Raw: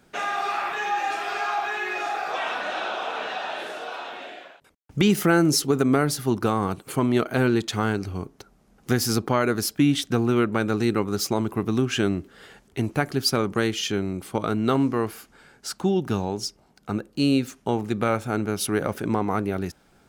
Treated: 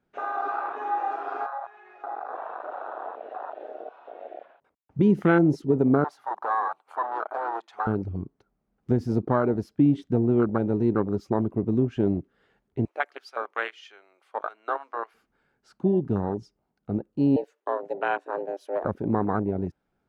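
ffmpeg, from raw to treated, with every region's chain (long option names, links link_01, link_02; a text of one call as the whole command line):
ffmpeg -i in.wav -filter_complex "[0:a]asettb=1/sr,asplit=3[link_01][link_02][link_03];[link_01]atrim=end=1.464[link_04];[link_02]atrim=start=1.46:end=4.99,asetpts=PTS-STARTPTS,afade=type=in:duration=0.004:curve=qsin,afade=type=out:start_time=3.526:duration=0.004:curve=qsin,equalizer=frequency=810:width=0.5:gain=12,acompressor=threshold=-32dB:ratio=4:attack=3.2:release=140:knee=1:detection=peak,highpass=42[link_05];[link_03]atrim=start=4.986[link_06];[link_04][link_05]acrossfade=duration=0.004:curve1=hsin:curve2=qsin[link_07];[link_07][link_06]acrossfade=duration=0.004:curve1=qsin:curve2=hsin,asettb=1/sr,asplit=3[link_08][link_09][link_10];[link_08]atrim=end=6.044[link_11];[link_09]atrim=start=6.04:end=7.87,asetpts=PTS-STARTPTS,afade=type=in:duration=0.004:curve=qsin,afade=type=out:start_time=1.826:duration=0.004:curve=qsin,volume=22dB,asoftclip=hard,volume=-22dB,highpass=frequency=840:width_type=q:width=3.6[link_12];[link_10]atrim=start=7.866[link_13];[link_11][link_12]acrossfade=duration=0.004:curve1=hsin:curve2=qsin[link_14];[link_14][link_13]acrossfade=duration=0.004:curve1=qsin:curve2=hsin,asettb=1/sr,asplit=3[link_15][link_16][link_17];[link_15]atrim=end=12.854[link_18];[link_16]atrim=start=12.85:end=15.14,asetpts=PTS-STARTPTS,afade=type=in:duration=0.004:curve=qsin,afade=type=out:start_time=2.286:duration=0.004:curve=qsin,highpass=frequency=590:width=0.5412,highpass=frequency=590:width=1.3066,equalizer=frequency=2300:width_type=o:width=1.9:gain=4[link_19];[link_17]atrim=start=15.136[link_20];[link_18][link_19]acrossfade=duration=0.004:curve1=hsin:curve2=qsin[link_21];[link_21][link_20]acrossfade=duration=0.004:curve1=qsin:curve2=hsin,asettb=1/sr,asplit=3[link_22][link_23][link_24];[link_22]atrim=end=17.364[link_25];[link_23]atrim=start=17.36:end=18.85,asetpts=PTS-STARTPTS,afade=type=in:duration=0.004:curve=qsin,afade=type=out:start_time=1.486:duration=0.004:curve=qsin,highpass=frequency=370:poles=1,afreqshift=190[link_26];[link_24]atrim=start=18.846[link_27];[link_25][link_26]acrossfade=duration=0.004:curve1=hsin:curve2=qsin[link_28];[link_28][link_27]acrossfade=duration=0.004:curve1=qsin:curve2=hsin,aemphasis=mode=reproduction:type=75kf,afwtdn=0.0501,highshelf=frequency=4900:gain=-5" out.wav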